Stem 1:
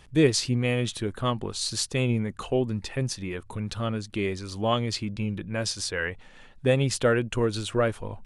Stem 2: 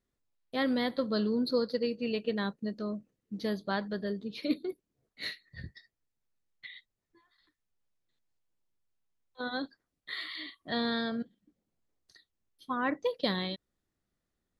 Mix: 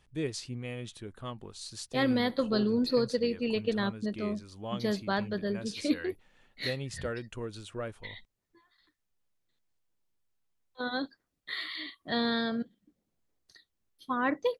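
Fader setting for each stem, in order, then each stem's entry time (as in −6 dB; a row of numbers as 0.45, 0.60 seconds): −13.5, +2.0 decibels; 0.00, 1.40 seconds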